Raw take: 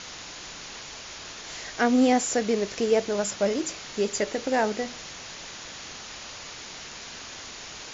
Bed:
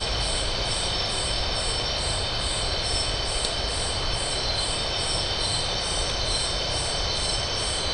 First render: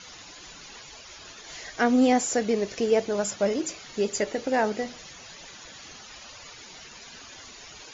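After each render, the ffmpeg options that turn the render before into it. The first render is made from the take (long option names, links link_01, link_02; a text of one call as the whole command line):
ffmpeg -i in.wav -af "afftdn=noise_reduction=12:noise_floor=-41" out.wav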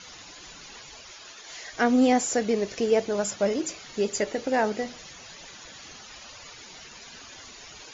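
ffmpeg -i in.wav -filter_complex "[0:a]asettb=1/sr,asplit=3[link_01][link_02][link_03];[link_01]atrim=end=1.114[link_04];[link_02]atrim=start=1.11:end=1.73,asetpts=PTS-STARTPTS,afade=type=in:duration=0.004:curve=qsin,afade=type=out:start_time=0.616:duration=0.004:curve=qsin,lowshelf=frequency=270:gain=-11.5[link_05];[link_03]atrim=start=1.726[link_06];[link_04][link_05]acrossfade=duration=0.004:curve1=hsin:curve2=qsin[link_07];[link_07][link_06]acrossfade=duration=0.004:curve1=qsin:curve2=hsin" out.wav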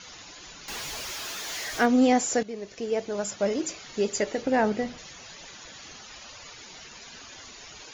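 ffmpeg -i in.wav -filter_complex "[0:a]asettb=1/sr,asplit=3[link_01][link_02][link_03];[link_01]atrim=end=0.684[link_04];[link_02]atrim=start=0.68:end=1.86,asetpts=PTS-STARTPTS,afade=type=in:duration=0.004:curve=qsin,afade=type=out:start_time=1.176:duration=0.004:curve=qsin,aeval=exprs='val(0)+0.5*0.0237*sgn(val(0))':channel_layout=same[link_05];[link_03]atrim=start=1.856[link_06];[link_04][link_05]acrossfade=duration=0.004:curve1=hsin:curve2=qsin[link_07];[link_07][link_06]acrossfade=duration=0.004:curve1=qsin:curve2=hsin,asettb=1/sr,asplit=3[link_08][link_09][link_10];[link_08]atrim=end=4.424[link_11];[link_09]atrim=start=4.42:end=4.98,asetpts=PTS-STARTPTS,afade=type=in:duration=0.004:curve=qsin,afade=type=out:start_time=0.556:duration=0.004:curve=qsin,bass=frequency=250:gain=7,treble=frequency=4000:gain=-5[link_12];[link_10]atrim=start=4.976[link_13];[link_11][link_12]acrossfade=duration=0.004:curve1=hsin:curve2=qsin[link_14];[link_14][link_13]acrossfade=duration=0.004:curve1=qsin:curve2=hsin,asplit=2[link_15][link_16];[link_15]atrim=end=2.43,asetpts=PTS-STARTPTS,afade=type=out:start_time=2.426:duration=0.004:curve=hsin:silence=0.199526[link_17];[link_16]atrim=start=2.43,asetpts=PTS-STARTPTS,afade=type=in:duration=1.25:silence=0.199526[link_18];[link_17][link_18]concat=n=2:v=0:a=1" out.wav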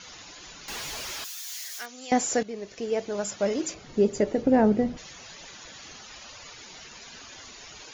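ffmpeg -i in.wav -filter_complex "[0:a]asettb=1/sr,asplit=3[link_01][link_02][link_03];[link_01]atrim=end=1.244[link_04];[link_02]atrim=start=1.24:end=2.12,asetpts=PTS-STARTPTS,afade=type=in:duration=0.004:curve=qsin,afade=type=out:start_time=0.876:duration=0.004:curve=qsin,aderivative[link_05];[link_03]atrim=start=2.116[link_06];[link_04][link_05]acrossfade=duration=0.004:curve1=hsin:curve2=qsin[link_07];[link_07][link_06]acrossfade=duration=0.004:curve1=qsin:curve2=hsin,asettb=1/sr,asplit=3[link_08][link_09][link_10];[link_08]atrim=end=3.744[link_11];[link_09]atrim=start=3.74:end=4.97,asetpts=PTS-STARTPTS,afade=type=in:duration=0.004:curve=qsin,afade=type=out:start_time=1.226:duration=0.004:curve=qsin,tiltshelf=frequency=720:gain=8.5[link_12];[link_10]atrim=start=4.966[link_13];[link_11][link_12]acrossfade=duration=0.004:curve1=hsin:curve2=qsin[link_14];[link_14][link_13]acrossfade=duration=0.004:curve1=qsin:curve2=hsin" out.wav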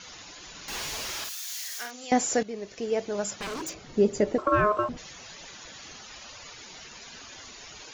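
ffmpeg -i in.wav -filter_complex "[0:a]asettb=1/sr,asplit=3[link_01][link_02][link_03];[link_01]atrim=end=0.504[link_04];[link_02]atrim=start=0.5:end=2.04,asetpts=PTS-STARTPTS,afade=type=in:duration=0.004:curve=qsin,afade=type=out:start_time=1.536:duration=0.004:curve=qsin,asplit=2[link_05][link_06];[link_06]adelay=49,volume=-4.5dB[link_07];[link_05][link_07]amix=inputs=2:normalize=0,atrim=end_sample=67914[link_08];[link_03]atrim=start=2.036[link_09];[link_04][link_08]acrossfade=duration=0.004:curve1=hsin:curve2=qsin[link_10];[link_10][link_09]acrossfade=duration=0.004:curve1=qsin:curve2=hsin,asettb=1/sr,asplit=3[link_11][link_12][link_13];[link_11]atrim=end=3.314[link_14];[link_12]atrim=start=3.31:end=3.85,asetpts=PTS-STARTPTS,afade=type=in:duration=0.004:curve=qsin,afade=type=out:start_time=0.536:duration=0.004:curve=qsin,aeval=exprs='0.0355*(abs(mod(val(0)/0.0355+3,4)-2)-1)':channel_layout=same[link_15];[link_13]atrim=start=3.846[link_16];[link_14][link_15]acrossfade=duration=0.004:curve1=hsin:curve2=qsin[link_17];[link_17][link_16]acrossfade=duration=0.004:curve1=qsin:curve2=hsin,asettb=1/sr,asplit=3[link_18][link_19][link_20];[link_18]atrim=end=4.384[link_21];[link_19]atrim=start=4.38:end=4.89,asetpts=PTS-STARTPTS,afade=type=in:duration=0.004:curve=qsin,afade=type=out:start_time=0.506:duration=0.004:curve=qsin,aeval=exprs='val(0)*sin(2*PI*840*n/s)':channel_layout=same[link_22];[link_20]atrim=start=4.886[link_23];[link_21][link_22]acrossfade=duration=0.004:curve1=hsin:curve2=qsin[link_24];[link_24][link_23]acrossfade=duration=0.004:curve1=qsin:curve2=hsin" out.wav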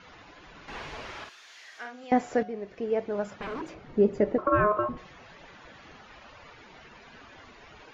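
ffmpeg -i in.wav -af "lowpass=2000,bandreject=frequency=181.4:width_type=h:width=4,bandreject=frequency=362.8:width_type=h:width=4,bandreject=frequency=544.2:width_type=h:width=4,bandreject=frequency=725.6:width_type=h:width=4,bandreject=frequency=907:width_type=h:width=4,bandreject=frequency=1088.4:width_type=h:width=4,bandreject=frequency=1269.8:width_type=h:width=4,bandreject=frequency=1451.2:width_type=h:width=4,bandreject=frequency=1632.6:width_type=h:width=4,bandreject=frequency=1814:width_type=h:width=4,bandreject=frequency=1995.4:width_type=h:width=4,bandreject=frequency=2176.8:width_type=h:width=4,bandreject=frequency=2358.2:width_type=h:width=4,bandreject=frequency=2539.6:width_type=h:width=4,bandreject=frequency=2721:width_type=h:width=4,bandreject=frequency=2902.4:width_type=h:width=4,bandreject=frequency=3083.8:width_type=h:width=4,bandreject=frequency=3265.2:width_type=h:width=4,bandreject=frequency=3446.6:width_type=h:width=4,bandreject=frequency=3628:width_type=h:width=4,bandreject=frequency=3809.4:width_type=h:width=4,bandreject=frequency=3990.8:width_type=h:width=4,bandreject=frequency=4172.2:width_type=h:width=4,bandreject=frequency=4353.6:width_type=h:width=4,bandreject=frequency=4535:width_type=h:width=4,bandreject=frequency=4716.4:width_type=h:width=4,bandreject=frequency=4897.8:width_type=h:width=4,bandreject=frequency=5079.2:width_type=h:width=4,bandreject=frequency=5260.6:width_type=h:width=4,bandreject=frequency=5442:width_type=h:width=4,bandreject=frequency=5623.4:width_type=h:width=4,bandreject=frequency=5804.8:width_type=h:width=4,bandreject=frequency=5986.2:width_type=h:width=4,bandreject=frequency=6167.6:width_type=h:width=4" out.wav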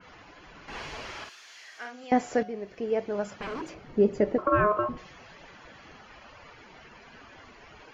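ffmpeg -i in.wav -af "bandreject=frequency=3700:width=12,adynamicequalizer=threshold=0.00501:dfrequency=2700:dqfactor=0.7:tfrequency=2700:tqfactor=0.7:attack=5:release=100:ratio=0.375:range=2.5:mode=boostabove:tftype=highshelf" out.wav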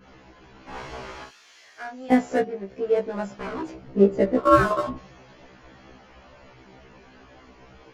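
ffmpeg -i in.wav -filter_complex "[0:a]asplit=2[link_01][link_02];[link_02]adynamicsmooth=sensitivity=7:basefreq=520,volume=2dB[link_03];[link_01][link_03]amix=inputs=2:normalize=0,afftfilt=real='re*1.73*eq(mod(b,3),0)':imag='im*1.73*eq(mod(b,3),0)':win_size=2048:overlap=0.75" out.wav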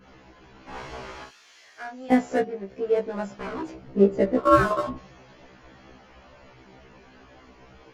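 ffmpeg -i in.wav -af "volume=-1dB" out.wav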